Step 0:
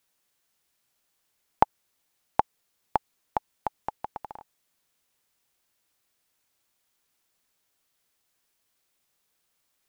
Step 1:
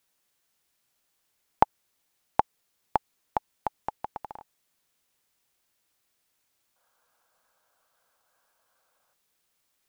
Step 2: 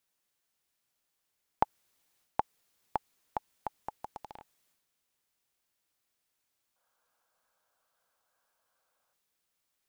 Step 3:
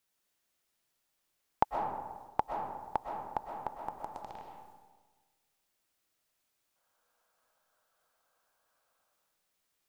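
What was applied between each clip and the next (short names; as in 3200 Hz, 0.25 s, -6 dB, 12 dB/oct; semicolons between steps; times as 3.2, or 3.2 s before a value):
spectral gain 6.76–9.13, 460–1700 Hz +12 dB
transient shaper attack -1 dB, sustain +7 dB; gain -6.5 dB
reverb RT60 1.4 s, pre-delay 85 ms, DRR 1.5 dB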